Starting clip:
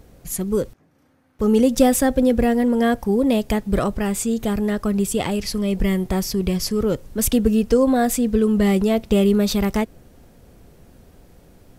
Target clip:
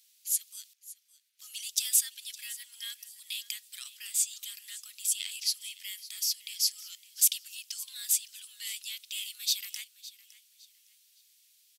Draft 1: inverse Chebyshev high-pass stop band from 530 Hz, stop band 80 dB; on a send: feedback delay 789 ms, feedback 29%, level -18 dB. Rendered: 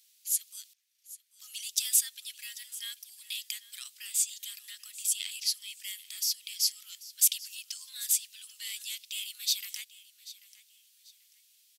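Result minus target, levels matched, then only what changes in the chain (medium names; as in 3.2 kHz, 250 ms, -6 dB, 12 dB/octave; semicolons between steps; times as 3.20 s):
echo 228 ms late
change: feedback delay 561 ms, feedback 29%, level -18 dB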